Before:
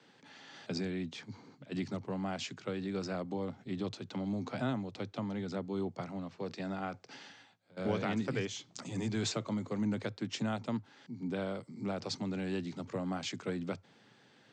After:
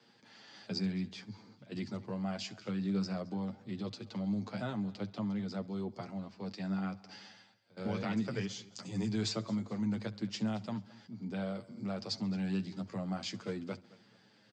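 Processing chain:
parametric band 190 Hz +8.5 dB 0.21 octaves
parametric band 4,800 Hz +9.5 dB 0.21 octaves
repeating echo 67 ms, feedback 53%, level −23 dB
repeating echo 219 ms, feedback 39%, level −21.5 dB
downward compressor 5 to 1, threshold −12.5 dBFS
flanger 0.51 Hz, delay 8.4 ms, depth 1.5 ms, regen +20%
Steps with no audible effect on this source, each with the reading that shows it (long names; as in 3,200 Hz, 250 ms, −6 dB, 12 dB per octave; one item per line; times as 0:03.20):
downward compressor, threshold −12.5 dBFS: peak of its input −18.5 dBFS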